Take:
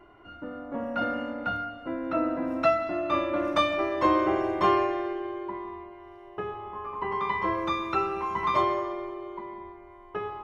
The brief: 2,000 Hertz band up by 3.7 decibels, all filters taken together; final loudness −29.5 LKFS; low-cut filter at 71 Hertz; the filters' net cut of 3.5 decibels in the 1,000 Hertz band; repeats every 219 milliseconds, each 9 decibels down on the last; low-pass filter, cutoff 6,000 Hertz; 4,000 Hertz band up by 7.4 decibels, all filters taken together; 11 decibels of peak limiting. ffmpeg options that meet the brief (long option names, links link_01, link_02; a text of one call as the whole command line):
ffmpeg -i in.wav -af "highpass=71,lowpass=6000,equalizer=frequency=1000:width_type=o:gain=-6,equalizer=frequency=2000:width_type=o:gain=4,equalizer=frequency=4000:width_type=o:gain=8.5,alimiter=limit=-22.5dB:level=0:latency=1,aecho=1:1:219|438|657|876:0.355|0.124|0.0435|0.0152,volume=2.5dB" out.wav